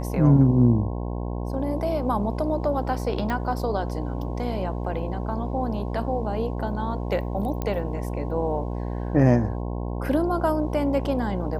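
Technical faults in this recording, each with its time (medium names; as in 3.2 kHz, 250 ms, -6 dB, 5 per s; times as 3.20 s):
buzz 60 Hz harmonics 18 -29 dBFS
3.30 s: pop -16 dBFS
7.62 s: pop -15 dBFS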